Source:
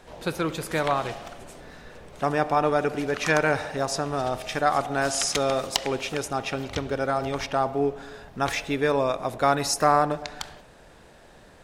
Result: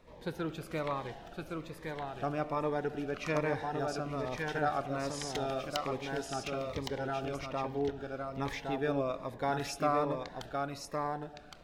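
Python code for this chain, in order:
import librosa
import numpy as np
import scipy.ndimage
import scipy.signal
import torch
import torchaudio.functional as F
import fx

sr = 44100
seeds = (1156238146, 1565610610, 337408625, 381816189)

y = fx.peak_eq(x, sr, hz=8800.0, db=-11.0, octaves=1.7)
y = y + 10.0 ** (-4.0 / 20.0) * np.pad(y, (int(1114 * sr / 1000.0), 0))[:len(y)]
y = fx.notch_cascade(y, sr, direction='falling', hz=1.2)
y = y * 10.0 ** (-8.0 / 20.0)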